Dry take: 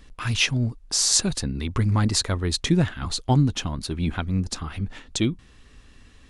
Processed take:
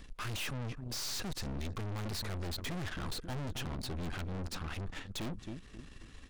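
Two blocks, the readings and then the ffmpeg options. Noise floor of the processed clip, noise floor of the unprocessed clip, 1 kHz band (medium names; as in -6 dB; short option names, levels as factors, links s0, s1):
-53 dBFS, -52 dBFS, -12.0 dB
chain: -filter_complex "[0:a]asplit=2[s0][s1];[s1]adelay=268,lowpass=f=1500:p=1,volume=0.126,asplit=2[s2][s3];[s3]adelay=268,lowpass=f=1500:p=1,volume=0.36,asplit=2[s4][s5];[s5]adelay=268,lowpass=f=1500:p=1,volume=0.36[s6];[s0][s2][s4][s6]amix=inputs=4:normalize=0,acrossover=split=4600[s7][s8];[s8]acompressor=threshold=0.0126:ratio=4:attack=1:release=60[s9];[s7][s9]amix=inputs=2:normalize=0,aeval=exprs='(tanh(89.1*val(0)+0.7)-tanh(0.7))/89.1':c=same,volume=1.19"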